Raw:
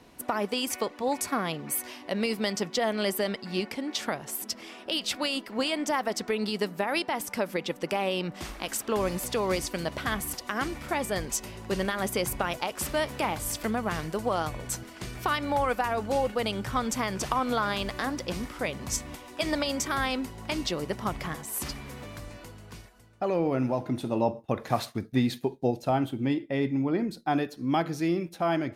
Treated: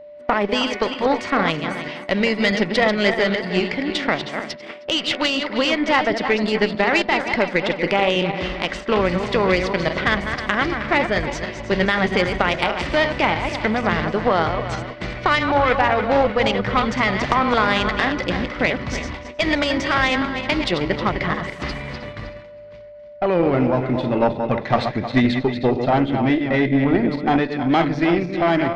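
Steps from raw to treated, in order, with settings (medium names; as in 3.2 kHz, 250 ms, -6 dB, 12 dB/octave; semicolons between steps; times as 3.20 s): backward echo that repeats 157 ms, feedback 57%, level -7 dB; low-pass 4.2 kHz 24 dB/octave; peaking EQ 2 kHz +8 dB 0.27 oct; Chebyshev shaper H 4 -17 dB, 5 -31 dB, 8 -42 dB, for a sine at -10 dBFS; gate -38 dBFS, range -15 dB; whistle 590 Hz -45 dBFS; trim +7.5 dB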